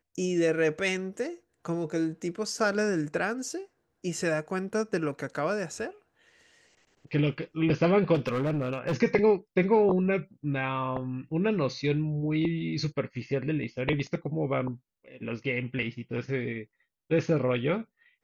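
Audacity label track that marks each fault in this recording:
8.140000	8.950000	clipping −24.5 dBFS

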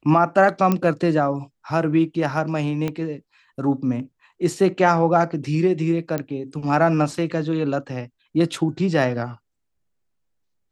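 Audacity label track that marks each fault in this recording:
0.720000	0.720000	click −8 dBFS
2.880000	2.880000	click −13 dBFS
6.180000	6.180000	click −12 dBFS

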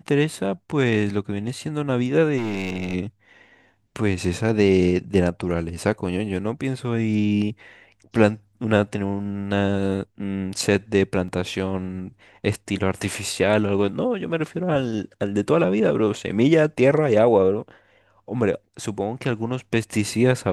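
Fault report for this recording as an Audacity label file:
2.370000	2.950000	clipping −22.5 dBFS
11.280000	11.280000	drop-out 3.6 ms

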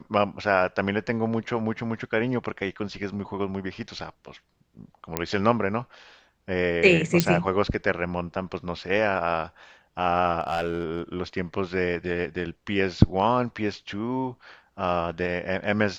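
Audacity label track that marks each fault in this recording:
5.170000	5.170000	click −7 dBFS
7.200000	7.200000	click −4 dBFS
10.400000	11.000000	clipping −20.5 dBFS

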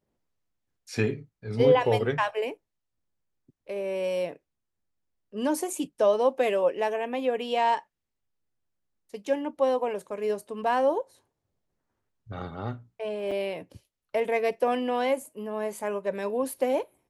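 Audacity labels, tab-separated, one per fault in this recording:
13.310000	13.320000	drop-out 5.3 ms

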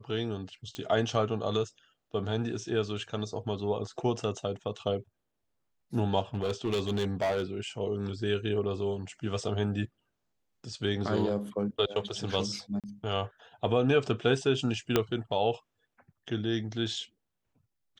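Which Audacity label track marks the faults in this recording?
0.750000	0.750000	click −22 dBFS
6.340000	7.430000	clipping −25 dBFS
12.800000	12.840000	drop-out 37 ms
14.960000	14.960000	click −9 dBFS

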